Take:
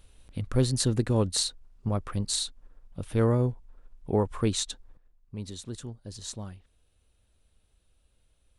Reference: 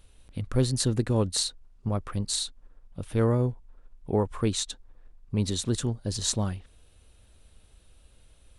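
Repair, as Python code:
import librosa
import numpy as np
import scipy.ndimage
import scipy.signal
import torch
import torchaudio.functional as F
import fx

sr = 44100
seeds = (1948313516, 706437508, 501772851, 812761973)

y = fx.gain(x, sr, db=fx.steps((0.0, 0.0), (4.97, 11.0)))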